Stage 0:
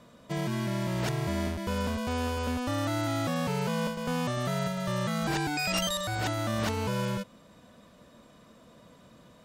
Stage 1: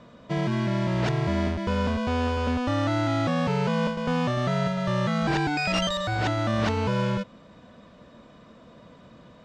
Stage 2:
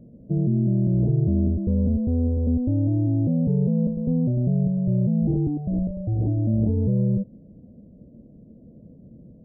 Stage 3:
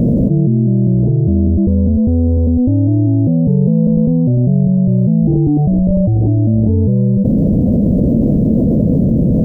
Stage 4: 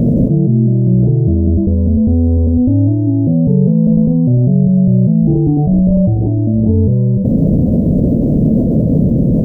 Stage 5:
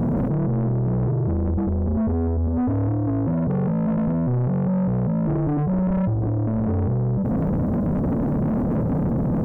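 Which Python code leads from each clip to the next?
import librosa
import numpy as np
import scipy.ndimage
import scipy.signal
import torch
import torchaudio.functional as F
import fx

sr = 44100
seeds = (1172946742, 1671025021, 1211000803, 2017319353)

y1 = fx.air_absorb(x, sr, metres=130.0)
y1 = y1 * librosa.db_to_amplitude(5.5)
y2 = scipy.ndimage.gaussian_filter1d(y1, 22.0, mode='constant')
y2 = y2 * librosa.db_to_amplitude(7.0)
y3 = fx.env_flatten(y2, sr, amount_pct=100)
y3 = y3 * librosa.db_to_amplitude(7.0)
y4 = fx.rev_gated(y3, sr, seeds[0], gate_ms=90, shape='flat', drr_db=8.5)
y5 = 10.0 ** (-15.0 / 20.0) * np.tanh(y4 / 10.0 ** (-15.0 / 20.0))
y5 = y5 * librosa.db_to_amplitude(-4.0)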